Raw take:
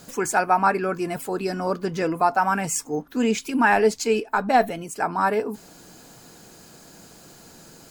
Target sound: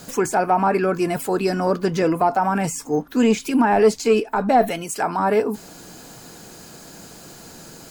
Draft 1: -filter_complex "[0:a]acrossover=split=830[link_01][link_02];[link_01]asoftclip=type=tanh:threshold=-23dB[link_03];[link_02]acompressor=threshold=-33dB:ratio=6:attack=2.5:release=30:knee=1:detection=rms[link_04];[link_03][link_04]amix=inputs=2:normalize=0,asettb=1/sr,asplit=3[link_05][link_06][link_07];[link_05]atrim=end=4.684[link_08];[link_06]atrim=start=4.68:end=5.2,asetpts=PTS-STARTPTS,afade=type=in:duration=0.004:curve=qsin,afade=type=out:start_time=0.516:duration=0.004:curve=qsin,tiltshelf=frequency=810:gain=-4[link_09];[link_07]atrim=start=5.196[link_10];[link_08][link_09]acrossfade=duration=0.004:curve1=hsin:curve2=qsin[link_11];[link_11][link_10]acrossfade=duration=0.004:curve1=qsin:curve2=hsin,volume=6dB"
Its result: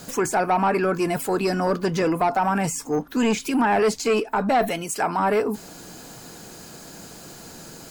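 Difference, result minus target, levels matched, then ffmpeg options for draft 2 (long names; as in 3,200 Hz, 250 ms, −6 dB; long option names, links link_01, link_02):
soft clipping: distortion +12 dB
-filter_complex "[0:a]acrossover=split=830[link_01][link_02];[link_01]asoftclip=type=tanh:threshold=-12.5dB[link_03];[link_02]acompressor=threshold=-33dB:ratio=6:attack=2.5:release=30:knee=1:detection=rms[link_04];[link_03][link_04]amix=inputs=2:normalize=0,asettb=1/sr,asplit=3[link_05][link_06][link_07];[link_05]atrim=end=4.684[link_08];[link_06]atrim=start=4.68:end=5.2,asetpts=PTS-STARTPTS,afade=type=in:duration=0.004:curve=qsin,afade=type=out:start_time=0.516:duration=0.004:curve=qsin,tiltshelf=frequency=810:gain=-4[link_09];[link_07]atrim=start=5.196[link_10];[link_08][link_09]acrossfade=duration=0.004:curve1=hsin:curve2=qsin[link_11];[link_11][link_10]acrossfade=duration=0.004:curve1=qsin:curve2=hsin,volume=6dB"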